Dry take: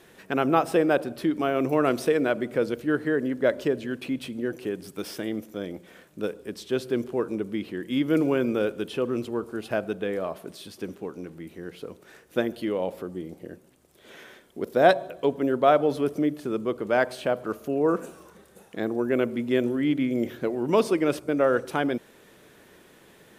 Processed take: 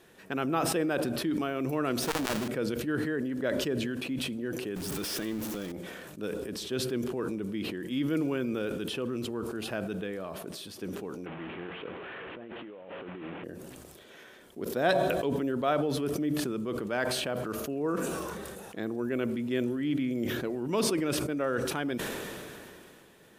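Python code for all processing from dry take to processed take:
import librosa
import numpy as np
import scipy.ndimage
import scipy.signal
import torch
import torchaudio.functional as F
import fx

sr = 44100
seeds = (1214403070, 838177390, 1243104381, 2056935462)

y = fx.chain(x, sr, fx.halfwave_hold(),
    fx.transformer_sat(knee_hz=710.0), at=(2.02, 2.48))
y = fx.chain(y, sr, fx.zero_step(step_db=-33.5),
    fx.pre_swell(db_per_s=25.0), at=(4.76, 5.72))
y = fx.chain(y, sr, fx.delta_mod(bps=16000, step_db=-34.5),
    fx.highpass(hz=190.0, slope=6),
    fx.over_compress(threshold_db=-38.0, ratio=-1.0), at=(11.26, 13.44))
y = fx.notch(y, sr, hz=2100.0, q=23.0)
y = fx.dynamic_eq(y, sr, hz=630.0, q=0.79, threshold_db=-35.0, ratio=4.0, max_db=-6)
y = fx.sustainer(y, sr, db_per_s=22.0)
y = F.gain(torch.from_numpy(y), -4.5).numpy()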